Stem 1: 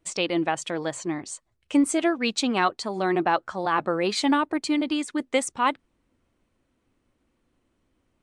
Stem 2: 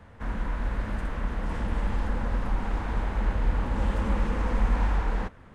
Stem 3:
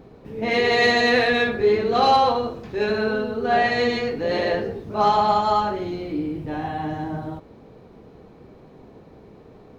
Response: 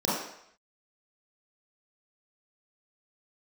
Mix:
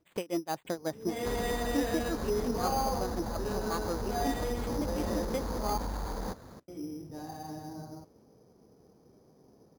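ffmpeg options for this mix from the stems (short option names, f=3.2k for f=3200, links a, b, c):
-filter_complex "[0:a]aeval=exprs='val(0)*pow(10,-24*(0.5-0.5*cos(2*PI*5.6*n/s))/20)':c=same,volume=3dB[a];[1:a]equalizer=f=580:t=o:w=2.2:g=4,adelay=1050,volume=2.5dB[b];[2:a]adelay=650,volume=-12.5dB,asplit=3[c][d][e];[c]atrim=end=5.78,asetpts=PTS-STARTPTS,afade=t=out:st=5.776:d=0.004:c=hsin[f];[d]atrim=start=5.78:end=6.68,asetpts=PTS-STARTPTS,volume=0[g];[e]atrim=start=6.68,asetpts=PTS-STARTPTS,afade=t=in:d=0.004:c=hsin[h];[f][g][h]concat=n=3:v=0:a=1[i];[a][b]amix=inputs=2:normalize=0,asoftclip=type=tanh:threshold=-16.5dB,acompressor=threshold=-27dB:ratio=6,volume=0dB[j];[i][j]amix=inputs=2:normalize=0,highpass=f=91:p=1,equalizer=f=5.7k:t=o:w=2.9:g=-14.5,acrusher=samples=8:mix=1:aa=0.000001"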